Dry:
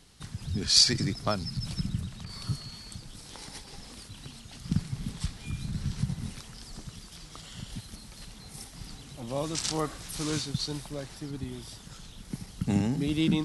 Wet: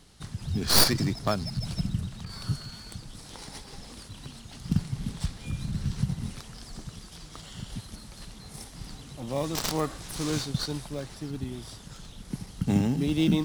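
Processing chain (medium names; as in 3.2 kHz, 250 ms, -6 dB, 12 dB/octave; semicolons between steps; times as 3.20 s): tracing distortion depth 0.11 ms; in parallel at -10 dB: sample-and-hold 15×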